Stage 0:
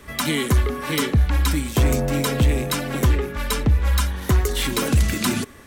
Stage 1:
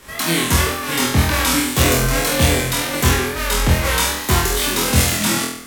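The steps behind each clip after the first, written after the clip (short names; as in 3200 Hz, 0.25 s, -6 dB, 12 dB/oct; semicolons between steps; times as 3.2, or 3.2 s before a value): spectral whitening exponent 0.6; wow and flutter 120 cents; flutter echo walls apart 4.1 m, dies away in 0.63 s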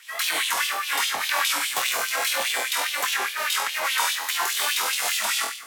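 limiter -9 dBFS, peak gain reduction 7.5 dB; LFO high-pass sine 4.9 Hz 720–3200 Hz; gain -5 dB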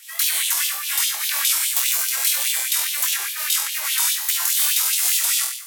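pre-emphasis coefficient 0.97; gain +7.5 dB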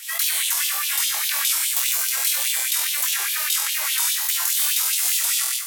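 in parallel at -1 dB: negative-ratio compressor -31 dBFS, ratio -1; on the sum: overloaded stage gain 6.5 dB; gain -3 dB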